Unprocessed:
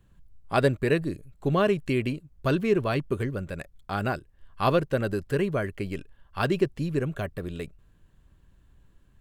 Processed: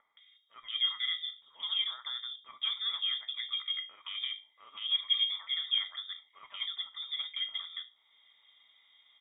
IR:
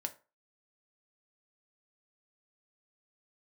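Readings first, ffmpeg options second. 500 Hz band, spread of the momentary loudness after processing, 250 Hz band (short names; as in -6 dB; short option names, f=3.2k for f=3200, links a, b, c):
under -40 dB, 14 LU, under -40 dB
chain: -filter_complex "[0:a]equalizer=f=250:t=o:w=1:g=7,equalizer=f=500:t=o:w=1:g=-4,equalizer=f=1k:t=o:w=1:g=10,asplit=2[a][b];[b]acompressor=mode=upward:threshold=-24dB:ratio=2.5,volume=3dB[c];[a][c]amix=inputs=2:normalize=0,alimiter=limit=-9dB:level=0:latency=1:release=87,asplit=3[d][e][f];[d]bandpass=f=530:t=q:w=8,volume=0dB[g];[e]bandpass=f=1.84k:t=q:w=8,volume=-6dB[h];[f]bandpass=f=2.48k:t=q:w=8,volume=-9dB[i];[g][h][i]amix=inputs=3:normalize=0[j];[1:a]atrim=start_sample=2205[k];[j][k]afir=irnorm=-1:irlink=0,lowpass=f=3.2k:t=q:w=0.5098,lowpass=f=3.2k:t=q:w=0.6013,lowpass=f=3.2k:t=q:w=0.9,lowpass=f=3.2k:t=q:w=2.563,afreqshift=-3800,acrossover=split=1500[l][m];[m]adelay=170[n];[l][n]amix=inputs=2:normalize=0,volume=-2dB"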